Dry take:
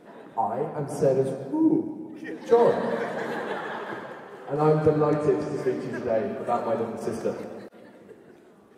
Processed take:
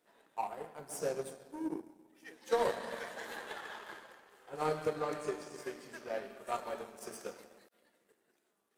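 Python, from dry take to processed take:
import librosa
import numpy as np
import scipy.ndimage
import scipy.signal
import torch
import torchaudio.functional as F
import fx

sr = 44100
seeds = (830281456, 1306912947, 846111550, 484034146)

y = fx.tilt_eq(x, sr, slope=4.0)
y = fx.power_curve(y, sr, exponent=1.4)
y = y * librosa.db_to_amplitude(-6.0)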